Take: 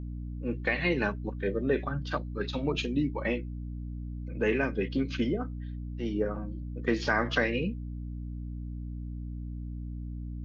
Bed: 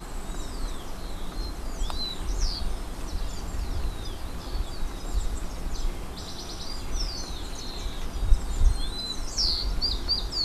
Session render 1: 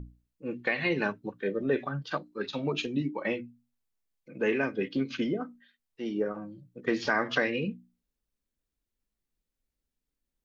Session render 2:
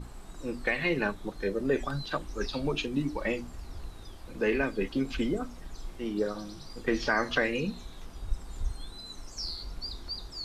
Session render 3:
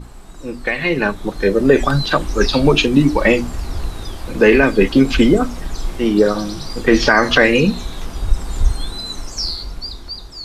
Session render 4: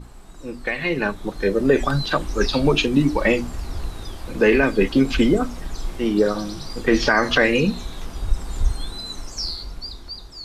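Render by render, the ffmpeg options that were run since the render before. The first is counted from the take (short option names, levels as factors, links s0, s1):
-af "bandreject=f=60:t=h:w=6,bandreject=f=120:t=h:w=6,bandreject=f=180:t=h:w=6,bandreject=f=240:t=h:w=6,bandreject=f=300:t=h:w=6"
-filter_complex "[1:a]volume=0.266[s0];[0:a][s0]amix=inputs=2:normalize=0"
-af "dynaudnorm=f=120:g=21:m=3.76,alimiter=level_in=2.24:limit=0.891:release=50:level=0:latency=1"
-af "volume=0.562"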